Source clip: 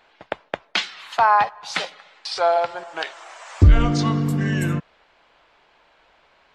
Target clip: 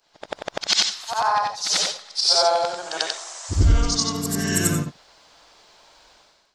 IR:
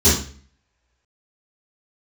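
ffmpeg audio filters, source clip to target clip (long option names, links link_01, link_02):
-af "afftfilt=real='re':imag='-im':win_size=8192:overlap=0.75,dynaudnorm=framelen=110:gausssize=7:maxgain=14dB,highshelf=frequency=3700:width_type=q:width=1.5:gain=13.5,volume=-6dB"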